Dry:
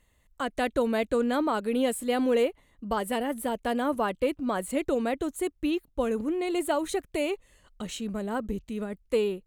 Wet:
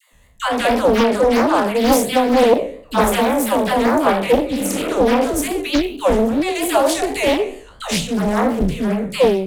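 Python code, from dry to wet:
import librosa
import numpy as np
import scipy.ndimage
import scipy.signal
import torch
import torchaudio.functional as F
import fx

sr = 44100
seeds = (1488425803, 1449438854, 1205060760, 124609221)

p1 = fx.spec_trails(x, sr, decay_s=0.49)
p2 = fx.vibrato(p1, sr, rate_hz=4.4, depth_cents=95.0)
p3 = fx.rider(p2, sr, range_db=3, speed_s=0.5)
p4 = p2 + (p3 * 10.0 ** (-0.5 / 20.0))
p5 = fx.dynamic_eq(p4, sr, hz=1400.0, q=0.86, threshold_db=-33.0, ratio=4.0, max_db=-4)
p6 = fx.spec_repair(p5, sr, seeds[0], start_s=4.48, length_s=0.35, low_hz=210.0, high_hz=2700.0, source='both')
p7 = fx.peak_eq(p6, sr, hz=350.0, db=-11.0, octaves=0.24)
p8 = fx.dispersion(p7, sr, late='lows', ms=128.0, hz=600.0)
p9 = fx.doppler_dist(p8, sr, depth_ms=0.7)
y = p9 * 10.0 ** (7.5 / 20.0)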